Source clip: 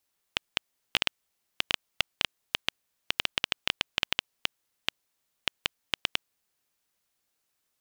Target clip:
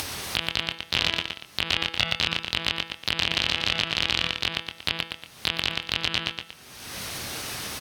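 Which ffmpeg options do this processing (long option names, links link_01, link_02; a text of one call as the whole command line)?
ffmpeg -i in.wav -filter_complex "[0:a]aemphasis=mode=reproduction:type=bsi,bandreject=frequency=7300:width=5.8,asplit=2[link_01][link_02];[link_02]adelay=24,volume=-9dB[link_03];[link_01][link_03]amix=inputs=2:normalize=0,bandreject=frequency=165.6:width_type=h:width=4,bandreject=frequency=331.2:width_type=h:width=4,bandreject=frequency=496.8:width_type=h:width=4,bandreject=frequency=662.4:width_type=h:width=4,bandreject=frequency=828:width_type=h:width=4,bandreject=frequency=993.6:width_type=h:width=4,bandreject=frequency=1159.2:width_type=h:width=4,bandreject=frequency=1324.8:width_type=h:width=4,bandreject=frequency=1490.4:width_type=h:width=4,bandreject=frequency=1656:width_type=h:width=4,bandreject=frequency=1821.6:width_type=h:width=4,bandreject=frequency=1987.2:width_type=h:width=4,bandreject=frequency=2152.8:width_type=h:width=4,bandreject=frequency=2318.4:width_type=h:width=4,bandreject=frequency=2484:width_type=h:width=4,bandreject=frequency=2649.6:width_type=h:width=4,bandreject=frequency=2815.2:width_type=h:width=4,bandreject=frequency=2980.8:width_type=h:width=4,bandreject=frequency=3146.4:width_type=h:width=4,bandreject=frequency=3312:width_type=h:width=4,bandreject=frequency=3477.6:width_type=h:width=4,bandreject=frequency=3643.2:width_type=h:width=4,bandreject=frequency=3808.8:width_type=h:width=4,acompressor=mode=upward:threshold=-32dB:ratio=2.5,asplit=2[link_04][link_05];[link_05]asetrate=58866,aresample=44100,atempo=0.749154,volume=-13dB[link_06];[link_04][link_06]amix=inputs=2:normalize=0,highpass=88,highshelf=frequency=2800:gain=7.5,asplit=2[link_07][link_08];[link_08]aecho=0:1:117|234|351:0.141|0.0537|0.0204[link_09];[link_07][link_09]amix=inputs=2:normalize=0,alimiter=level_in=23.5dB:limit=-1dB:release=50:level=0:latency=1,volume=-4.5dB" out.wav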